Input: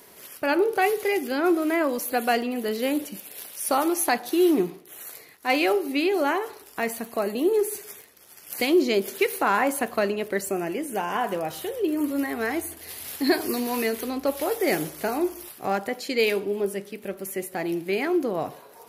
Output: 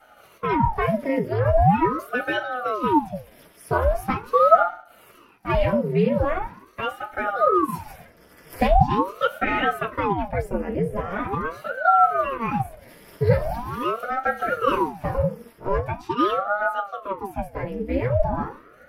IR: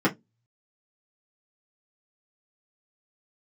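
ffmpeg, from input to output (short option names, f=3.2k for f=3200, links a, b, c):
-filter_complex "[0:a]asettb=1/sr,asplit=3[a][b][c];[a]atrim=end=7.684[d];[b]atrim=start=7.68:end=8.67,asetpts=PTS-STARTPTS,afade=t=in:d=0.004:c=qsin,afade=t=out:st=0.986:d=0.004:c=qsin,acontrast=89[e];[c]atrim=start=8.666[f];[d][e]acrossfade=d=0.004:c1=hsin:c2=qsin[g];[g][f]acrossfade=d=0.004:c1=qsin:c2=hsin[h];[1:a]atrim=start_sample=2205[i];[h][i]afir=irnorm=-1:irlink=0,aeval=exprs='val(0)*sin(2*PI*590*n/s+590*0.8/0.42*sin(2*PI*0.42*n/s))':c=same,volume=-15dB"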